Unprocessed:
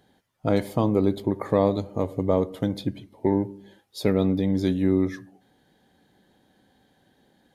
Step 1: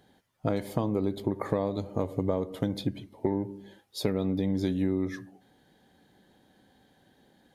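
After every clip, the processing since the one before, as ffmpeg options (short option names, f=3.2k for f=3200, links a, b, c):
-af "acompressor=threshold=-23dB:ratio=10"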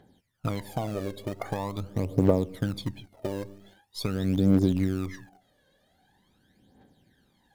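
-filter_complex "[0:a]asplit=2[a][b];[b]acrusher=bits=5:dc=4:mix=0:aa=0.000001,volume=-9.5dB[c];[a][c]amix=inputs=2:normalize=0,aphaser=in_gain=1:out_gain=1:delay=1.9:decay=0.72:speed=0.44:type=triangular,volume=-5dB"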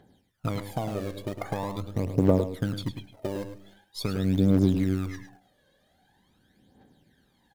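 -filter_complex "[0:a]asplit=2[a][b];[b]adelay=105,volume=-9dB,highshelf=f=4k:g=-2.36[c];[a][c]amix=inputs=2:normalize=0"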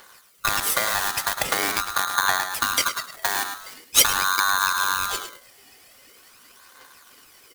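-af "acompressor=threshold=-29dB:ratio=2.5,crystalizer=i=7:c=0,aeval=exprs='val(0)*sgn(sin(2*PI*1300*n/s))':c=same,volume=7dB"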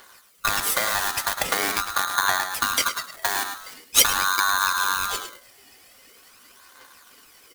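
-af "flanger=delay=2.8:depth=1.8:regen=-69:speed=0.9:shape=triangular,volume=4dB"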